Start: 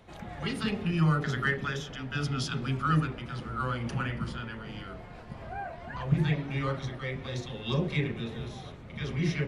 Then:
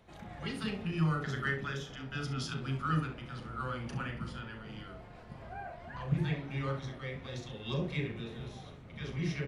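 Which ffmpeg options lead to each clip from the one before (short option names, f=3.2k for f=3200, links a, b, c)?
-af "aecho=1:1:37|66:0.316|0.237,volume=-6dB"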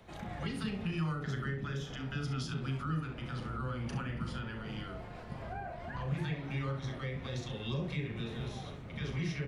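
-filter_complex "[0:a]acrossover=split=240|530[a][b][c];[a]acompressor=threshold=-40dB:ratio=4[d];[b]acompressor=threshold=-52dB:ratio=4[e];[c]acompressor=threshold=-48dB:ratio=4[f];[d][e][f]amix=inputs=3:normalize=0,volume=5dB"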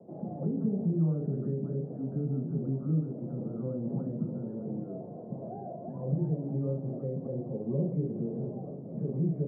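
-af "asuperpass=centerf=300:order=8:qfactor=0.61,volume=8dB"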